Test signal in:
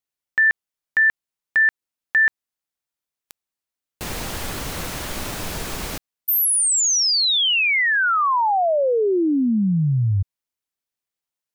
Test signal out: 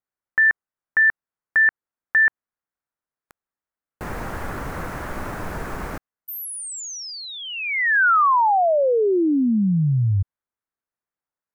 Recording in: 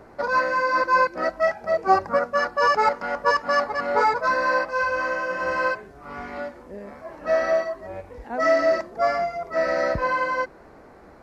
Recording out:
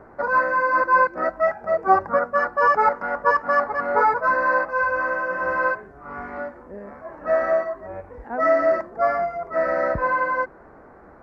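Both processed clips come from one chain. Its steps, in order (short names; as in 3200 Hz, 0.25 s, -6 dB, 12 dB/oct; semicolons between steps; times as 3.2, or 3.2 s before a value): resonant high shelf 2300 Hz -13 dB, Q 1.5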